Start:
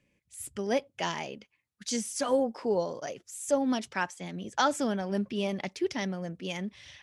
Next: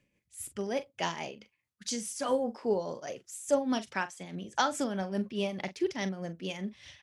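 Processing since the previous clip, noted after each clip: tremolo 4.8 Hz, depth 53%; doubling 42 ms -13 dB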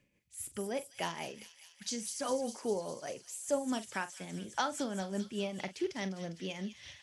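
in parallel at +2.5 dB: compression, threshold -40 dBFS, peak gain reduction 18 dB; on the sum: feedback echo behind a high-pass 202 ms, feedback 74%, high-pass 3.4 kHz, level -7.5 dB; trim -7 dB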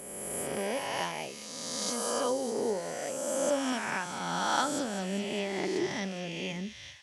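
reverse spectral sustain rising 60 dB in 2.10 s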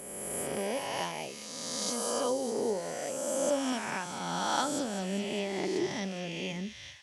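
dynamic bell 1.6 kHz, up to -4 dB, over -43 dBFS, Q 1.3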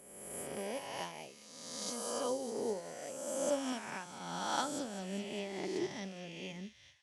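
upward expansion 1.5:1, over -52 dBFS; trim -3.5 dB

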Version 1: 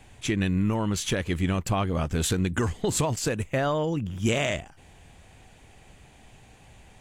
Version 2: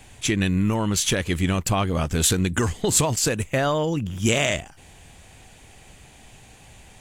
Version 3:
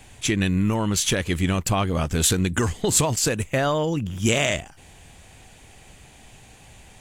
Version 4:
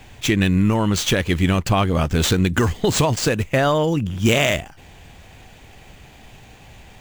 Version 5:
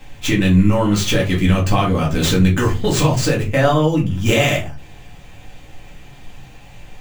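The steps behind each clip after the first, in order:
treble shelf 3.5 kHz +7.5 dB; trim +3 dB
no audible change
median filter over 5 samples; trim +4.5 dB
reverberation RT60 0.30 s, pre-delay 4 ms, DRR -3.5 dB; trim -3.5 dB

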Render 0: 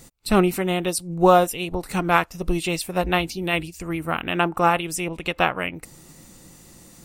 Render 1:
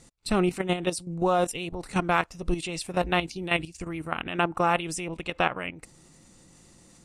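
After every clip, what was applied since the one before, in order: low-pass 9.7 kHz 24 dB/octave; level held to a coarse grid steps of 11 dB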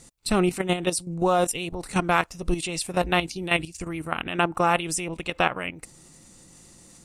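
treble shelf 7.2 kHz +8.5 dB; trim +2 dB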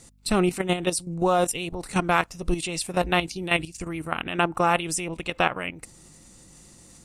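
hum 50 Hz, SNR 33 dB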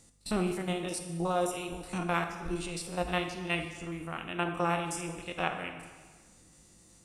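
spectrogram pixelated in time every 50 ms; plate-style reverb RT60 1.5 s, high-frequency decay 0.9×, DRR 5.5 dB; trim -8 dB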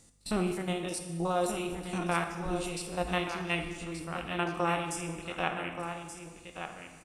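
delay 1177 ms -8.5 dB

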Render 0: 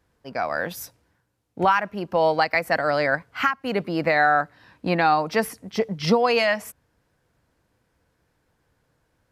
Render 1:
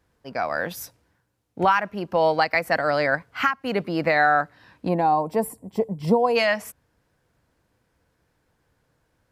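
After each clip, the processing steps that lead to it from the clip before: time-frequency box 4.88–6.36 s, 1.1–7 kHz -15 dB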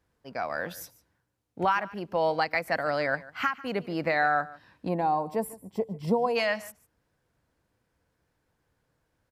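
delay 147 ms -19.5 dB; trim -6 dB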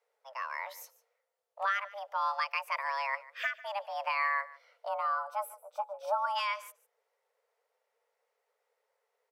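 frequency shift +400 Hz; trim -6 dB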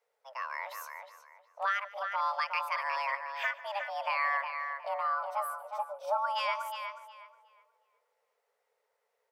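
filtered feedback delay 363 ms, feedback 26%, low-pass 3.7 kHz, level -6 dB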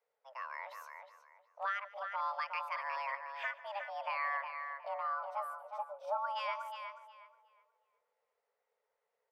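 low-pass 3.1 kHz 6 dB/octave; trim -5 dB

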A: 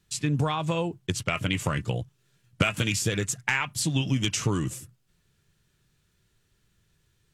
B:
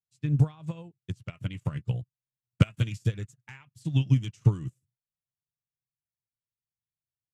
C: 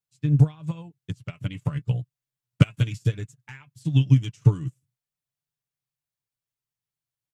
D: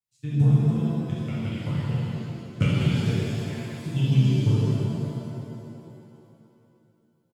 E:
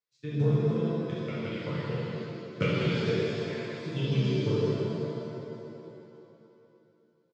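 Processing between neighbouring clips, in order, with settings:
peaking EQ 120 Hz +13 dB 1.5 oct; upward expansion 2.5:1, over -36 dBFS; trim -4 dB
comb 6.9 ms, depth 43%; trim +2.5 dB
doubling 12 ms -11 dB; pitch-shifted reverb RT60 2.7 s, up +7 st, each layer -8 dB, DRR -9 dB; trim -8 dB
cabinet simulation 240–5200 Hz, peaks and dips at 250 Hz -8 dB, 460 Hz +7 dB, 780 Hz -9 dB, 2.9 kHz -6 dB; trim +2.5 dB

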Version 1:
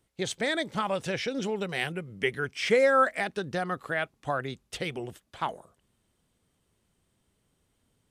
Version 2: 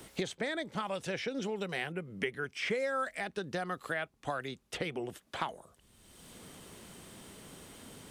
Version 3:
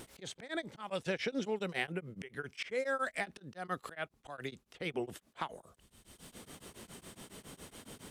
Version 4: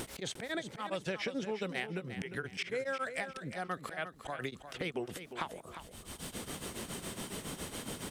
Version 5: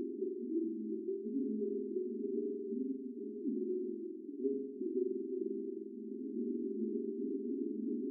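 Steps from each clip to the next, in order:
peaking EQ 120 Hz -3.5 dB 0.68 oct; three bands compressed up and down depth 100%; trim -6.5 dB
slow attack 170 ms; vibrato 0.66 Hz 7.9 cents; tremolo of two beating tones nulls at 7.2 Hz; trim +2.5 dB
compression 3:1, threshold -49 dBFS, peak gain reduction 14.5 dB; on a send: feedback delay 353 ms, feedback 29%, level -10.5 dB; on the sum: trim +11 dB
spring tank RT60 1.3 s, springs 46 ms, DRR -1 dB; FFT band-pass 210–420 Hz; gain riding within 4 dB 0.5 s; trim +5 dB

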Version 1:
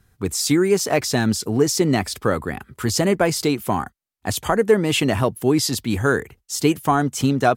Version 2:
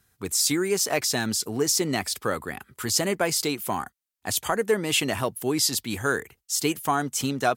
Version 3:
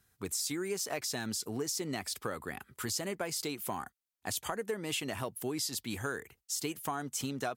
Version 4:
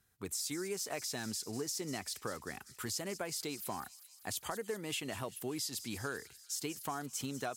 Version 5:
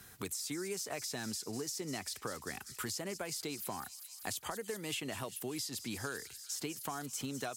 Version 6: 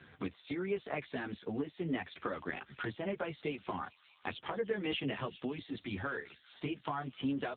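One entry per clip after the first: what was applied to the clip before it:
tilt EQ +2 dB/octave; trim -5 dB
compression 4:1, threshold -28 dBFS, peak gain reduction 9.5 dB; trim -5 dB
feedback echo behind a high-pass 196 ms, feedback 70%, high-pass 4.3 kHz, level -11 dB; trim -3.5 dB
three bands compressed up and down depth 70%; trim -1 dB
chorus voices 2, 0.52 Hz, delay 13 ms, depth 2.4 ms; trim +8 dB; AMR-NB 7.4 kbps 8 kHz

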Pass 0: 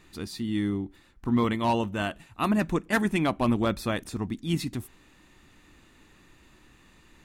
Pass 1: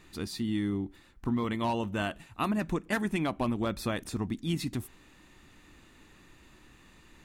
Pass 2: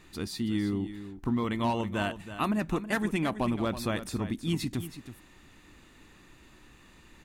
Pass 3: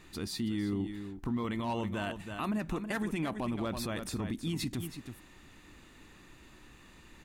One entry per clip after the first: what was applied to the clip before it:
compression 6:1, threshold -26 dBFS, peak gain reduction 7.5 dB
delay 324 ms -12 dB; trim +1 dB
peak limiter -25 dBFS, peak gain reduction 9 dB

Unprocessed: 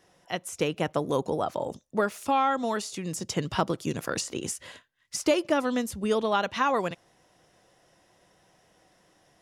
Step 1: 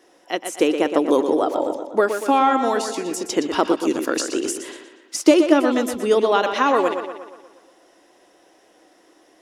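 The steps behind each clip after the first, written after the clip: resonant low shelf 210 Hz -12.5 dB, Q 3; on a send: tape echo 121 ms, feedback 56%, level -7 dB, low-pass 5.3 kHz; on the sum: trim +5.5 dB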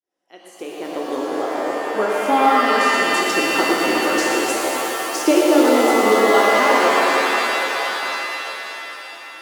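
fade-in on the opening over 2.37 s; pitch-shifted reverb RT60 3.7 s, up +7 st, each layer -2 dB, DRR -2.5 dB; trim -3.5 dB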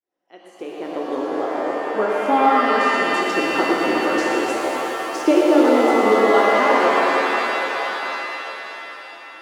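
low-pass 2.2 kHz 6 dB/octave

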